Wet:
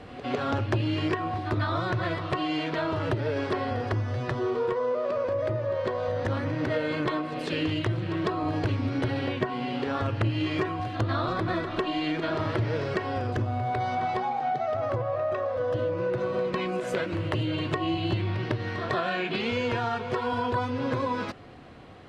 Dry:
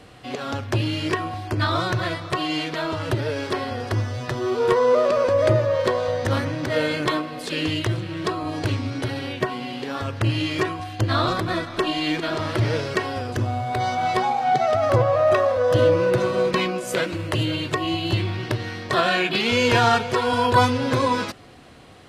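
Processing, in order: high shelf 10000 Hz -11 dB; pre-echo 0.152 s -14.5 dB; compressor, threshold -24 dBFS, peak gain reduction 12 dB; high shelf 4100 Hz -12 dB; vocal rider within 4 dB 2 s

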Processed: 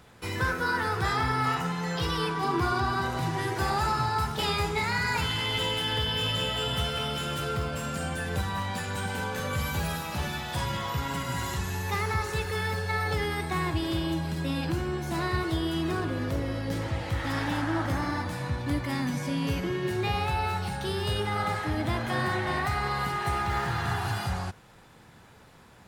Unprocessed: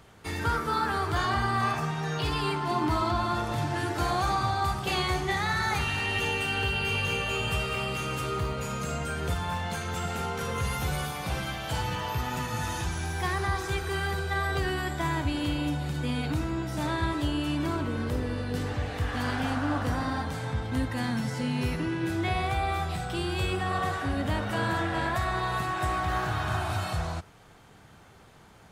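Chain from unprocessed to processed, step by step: wide varispeed 1.11×

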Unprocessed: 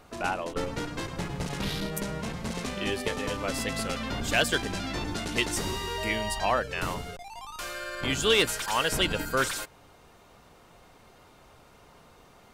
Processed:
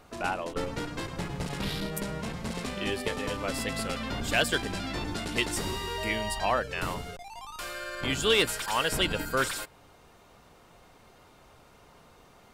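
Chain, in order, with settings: dynamic EQ 6200 Hz, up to -6 dB, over -56 dBFS, Q 8; gain -1 dB

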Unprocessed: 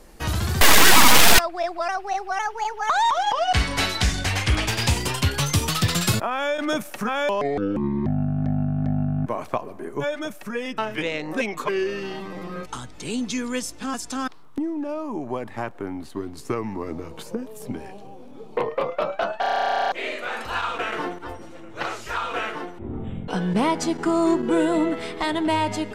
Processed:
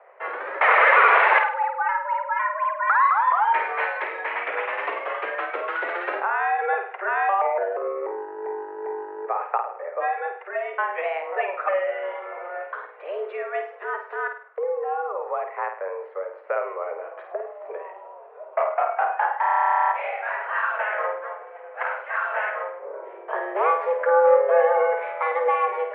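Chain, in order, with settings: flutter echo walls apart 8.8 m, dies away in 0.47 s; mistuned SSB +180 Hz 300–2000 Hz; gain +1.5 dB

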